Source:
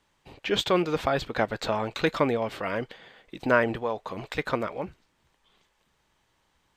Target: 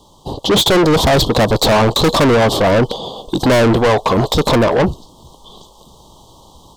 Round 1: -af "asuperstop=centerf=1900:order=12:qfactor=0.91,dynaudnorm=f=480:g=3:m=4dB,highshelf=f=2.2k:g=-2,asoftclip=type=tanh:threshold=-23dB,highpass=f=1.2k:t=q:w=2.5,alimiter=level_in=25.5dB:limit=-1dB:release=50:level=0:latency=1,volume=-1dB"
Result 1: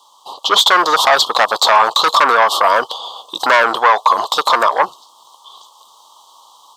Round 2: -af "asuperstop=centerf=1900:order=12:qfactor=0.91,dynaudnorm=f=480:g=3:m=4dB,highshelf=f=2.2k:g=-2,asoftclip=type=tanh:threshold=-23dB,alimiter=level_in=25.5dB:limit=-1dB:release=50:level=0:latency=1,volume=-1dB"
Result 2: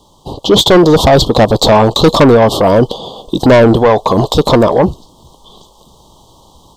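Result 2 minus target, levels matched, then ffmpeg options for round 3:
soft clip: distortion -5 dB
-af "asuperstop=centerf=1900:order=12:qfactor=0.91,dynaudnorm=f=480:g=3:m=4dB,highshelf=f=2.2k:g=-2,asoftclip=type=tanh:threshold=-34dB,alimiter=level_in=25.5dB:limit=-1dB:release=50:level=0:latency=1,volume=-1dB"

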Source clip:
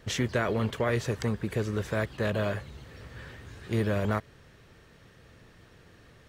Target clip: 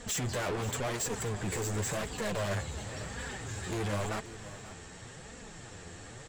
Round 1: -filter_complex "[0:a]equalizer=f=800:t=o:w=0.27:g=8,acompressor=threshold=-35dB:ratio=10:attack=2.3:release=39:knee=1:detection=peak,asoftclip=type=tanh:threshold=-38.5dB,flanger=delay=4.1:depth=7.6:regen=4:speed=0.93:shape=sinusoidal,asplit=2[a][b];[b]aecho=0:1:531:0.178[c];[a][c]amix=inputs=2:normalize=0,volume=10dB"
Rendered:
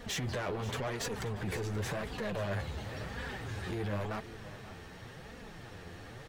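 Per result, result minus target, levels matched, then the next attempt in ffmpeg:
compressor: peak gain reduction +8.5 dB; 8000 Hz band -6.5 dB
-filter_complex "[0:a]equalizer=f=800:t=o:w=0.27:g=8,acompressor=threshold=-24.5dB:ratio=10:attack=2.3:release=39:knee=1:detection=peak,asoftclip=type=tanh:threshold=-38.5dB,flanger=delay=4.1:depth=7.6:regen=4:speed=0.93:shape=sinusoidal,asplit=2[a][b];[b]aecho=0:1:531:0.178[c];[a][c]amix=inputs=2:normalize=0,volume=10dB"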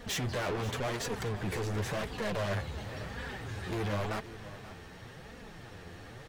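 8000 Hz band -7.5 dB
-filter_complex "[0:a]lowpass=f=7.6k:t=q:w=11,equalizer=f=800:t=o:w=0.27:g=8,acompressor=threshold=-24.5dB:ratio=10:attack=2.3:release=39:knee=1:detection=peak,asoftclip=type=tanh:threshold=-38.5dB,flanger=delay=4.1:depth=7.6:regen=4:speed=0.93:shape=sinusoidal,asplit=2[a][b];[b]aecho=0:1:531:0.178[c];[a][c]amix=inputs=2:normalize=0,volume=10dB"

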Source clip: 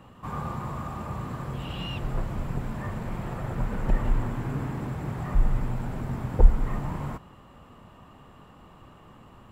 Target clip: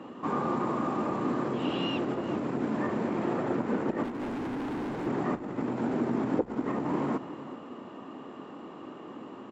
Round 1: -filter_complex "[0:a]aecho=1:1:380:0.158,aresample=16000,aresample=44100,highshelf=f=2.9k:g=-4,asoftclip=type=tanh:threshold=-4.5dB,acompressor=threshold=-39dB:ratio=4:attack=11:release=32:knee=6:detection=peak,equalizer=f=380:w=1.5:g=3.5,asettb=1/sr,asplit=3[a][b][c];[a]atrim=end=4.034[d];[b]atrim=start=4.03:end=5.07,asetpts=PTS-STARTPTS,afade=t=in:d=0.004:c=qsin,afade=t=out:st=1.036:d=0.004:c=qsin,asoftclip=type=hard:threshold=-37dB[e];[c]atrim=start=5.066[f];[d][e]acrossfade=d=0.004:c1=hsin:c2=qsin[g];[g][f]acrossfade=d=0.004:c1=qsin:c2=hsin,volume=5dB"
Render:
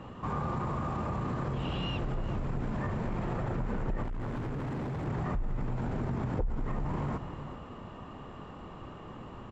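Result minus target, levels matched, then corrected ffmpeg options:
compressor: peak gain reduction +5 dB; 250 Hz band -3.0 dB
-filter_complex "[0:a]aecho=1:1:380:0.158,aresample=16000,aresample=44100,highshelf=f=2.9k:g=-4,asoftclip=type=tanh:threshold=-4.5dB,acompressor=threshold=-32dB:ratio=4:attack=11:release=32:knee=6:detection=peak,highpass=f=280:t=q:w=2.4,equalizer=f=380:w=1.5:g=3.5,asettb=1/sr,asplit=3[a][b][c];[a]atrim=end=4.034[d];[b]atrim=start=4.03:end=5.07,asetpts=PTS-STARTPTS,afade=t=in:d=0.004:c=qsin,afade=t=out:st=1.036:d=0.004:c=qsin,asoftclip=type=hard:threshold=-37dB[e];[c]atrim=start=5.066[f];[d][e]acrossfade=d=0.004:c1=hsin:c2=qsin[g];[g][f]acrossfade=d=0.004:c1=qsin:c2=hsin,volume=5dB"

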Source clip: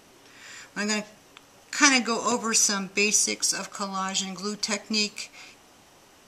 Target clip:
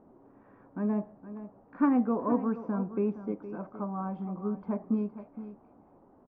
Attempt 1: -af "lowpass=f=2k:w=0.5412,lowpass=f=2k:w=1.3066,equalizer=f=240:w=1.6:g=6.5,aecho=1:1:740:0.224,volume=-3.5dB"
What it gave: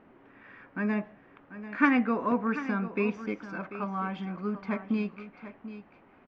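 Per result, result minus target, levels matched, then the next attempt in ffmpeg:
2000 Hz band +15.5 dB; echo 0.274 s late
-af "lowpass=f=990:w=0.5412,lowpass=f=990:w=1.3066,equalizer=f=240:w=1.6:g=6.5,aecho=1:1:740:0.224,volume=-3.5dB"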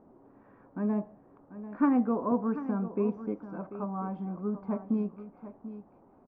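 echo 0.274 s late
-af "lowpass=f=990:w=0.5412,lowpass=f=990:w=1.3066,equalizer=f=240:w=1.6:g=6.5,aecho=1:1:466:0.224,volume=-3.5dB"

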